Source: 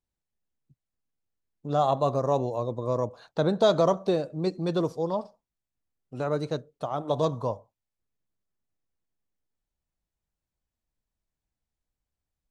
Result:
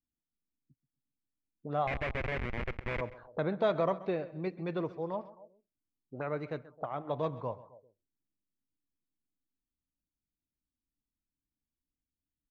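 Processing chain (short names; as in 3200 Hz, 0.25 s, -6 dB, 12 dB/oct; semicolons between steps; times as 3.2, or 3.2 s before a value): 1.87–3.01 Schmitt trigger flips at -25.5 dBFS; feedback echo 0.132 s, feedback 41%, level -18 dB; envelope low-pass 280–2200 Hz up, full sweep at -28 dBFS; gain -8.5 dB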